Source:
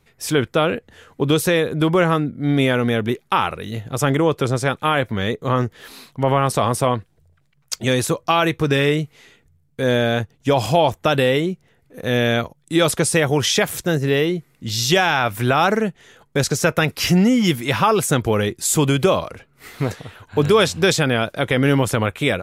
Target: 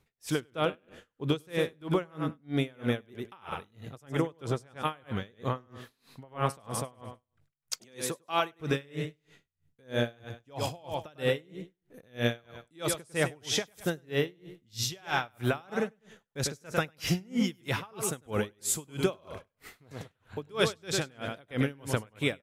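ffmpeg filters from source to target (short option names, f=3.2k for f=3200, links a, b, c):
-filter_complex "[0:a]asettb=1/sr,asplit=3[a][b][c];[a]atrim=end=7.744[d];[b]atrim=start=7.74:end=8.58,asetpts=PTS-STARTPTS,afade=t=in:d=0.004:c=qsin,afade=t=out:st=0.836:d=0.004:c=qsin,highpass=190[e];[c]atrim=start=8.576[f];[d][e]acrossfade=d=0.004:c1=hsin:c2=qsin[g];[g][f]acrossfade=d=0.004:c1=qsin:c2=hsin,aecho=1:1:100|200|300|400:0.398|0.119|0.0358|0.0107,aeval=exprs='val(0)*pow(10,-32*(0.5-0.5*cos(2*PI*3.1*n/s))/20)':c=same,volume=-8dB"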